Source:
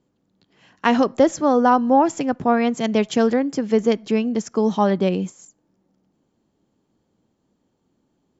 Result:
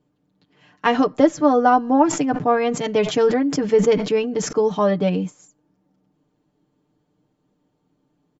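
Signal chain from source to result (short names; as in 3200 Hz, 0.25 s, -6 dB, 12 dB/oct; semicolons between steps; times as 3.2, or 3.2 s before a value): high shelf 6700 Hz -11.5 dB; comb 6.7 ms, depth 77%; 2.04–4.53 sustainer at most 86 dB/s; gain -1 dB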